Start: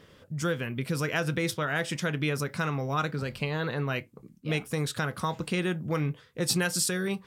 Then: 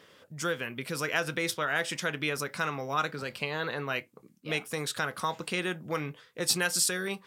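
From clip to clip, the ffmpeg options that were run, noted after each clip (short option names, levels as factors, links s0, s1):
-af "highpass=f=530:p=1,volume=1.19"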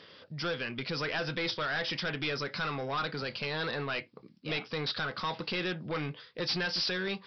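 -af "bass=f=250:g=1,treble=f=4000:g=12,aresample=11025,asoftclip=type=tanh:threshold=0.0316,aresample=44100,volume=1.26"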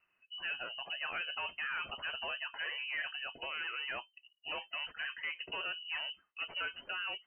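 -af "afftdn=nr=18:nf=-42,lowpass=f=2600:t=q:w=0.5098,lowpass=f=2600:t=q:w=0.6013,lowpass=f=2600:t=q:w=0.9,lowpass=f=2600:t=q:w=2.563,afreqshift=-3100,volume=0.562"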